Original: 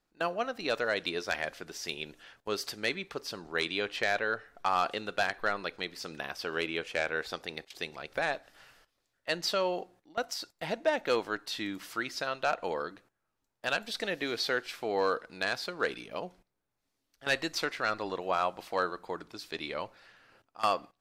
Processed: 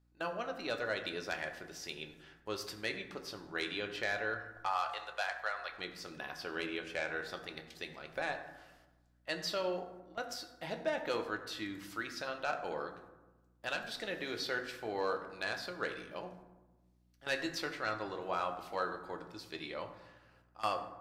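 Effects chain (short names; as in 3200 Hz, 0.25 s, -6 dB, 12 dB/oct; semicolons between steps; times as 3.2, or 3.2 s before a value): 4.66–5.72 HPF 590 Hz 24 dB/oct; reverb RT60 1.2 s, pre-delay 4 ms, DRR 4.5 dB; hum 60 Hz, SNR 31 dB; gain -7 dB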